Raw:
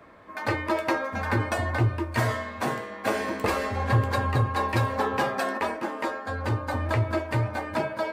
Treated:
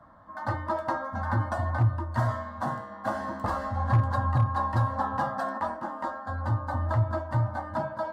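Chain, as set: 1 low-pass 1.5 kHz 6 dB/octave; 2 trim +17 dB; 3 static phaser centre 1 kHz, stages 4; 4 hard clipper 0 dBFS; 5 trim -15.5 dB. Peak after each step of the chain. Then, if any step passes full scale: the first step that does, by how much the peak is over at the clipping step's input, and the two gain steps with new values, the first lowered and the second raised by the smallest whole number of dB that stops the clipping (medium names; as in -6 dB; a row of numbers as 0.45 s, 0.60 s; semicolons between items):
-12.0 dBFS, +5.0 dBFS, +4.0 dBFS, 0.0 dBFS, -15.5 dBFS; step 2, 4.0 dB; step 2 +13 dB, step 5 -11.5 dB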